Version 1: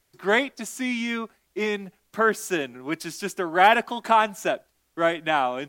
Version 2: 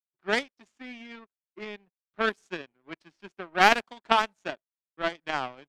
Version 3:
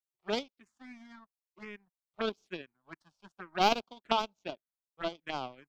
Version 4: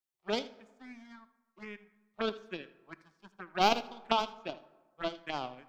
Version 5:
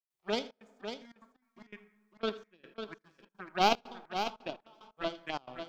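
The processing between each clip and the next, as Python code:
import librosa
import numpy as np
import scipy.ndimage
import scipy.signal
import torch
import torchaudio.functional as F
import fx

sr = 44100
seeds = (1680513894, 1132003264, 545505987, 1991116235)

y1 = fx.power_curve(x, sr, exponent=2.0)
y1 = fx.env_lowpass(y1, sr, base_hz=3000.0, full_db=-22.0)
y1 = F.gain(torch.from_numpy(y1), 3.0).numpy()
y2 = fx.env_phaser(y1, sr, low_hz=260.0, high_hz=1800.0, full_db=-28.5)
y2 = F.gain(torch.from_numpy(y2), -3.0).numpy()
y3 = y2 + 10.0 ** (-18.0 / 20.0) * np.pad(y2, (int(80 * sr / 1000.0), 0))[:len(y2)]
y3 = fx.rev_plate(y3, sr, seeds[0], rt60_s=1.3, hf_ratio=0.5, predelay_ms=0, drr_db=15.5)
y4 = fx.step_gate(y3, sr, bpm=148, pattern='.xxxx.xx..x.x.xx', floor_db=-24.0, edge_ms=4.5)
y4 = y4 + 10.0 ** (-8.0 / 20.0) * np.pad(y4, (int(549 * sr / 1000.0), 0))[:len(y4)]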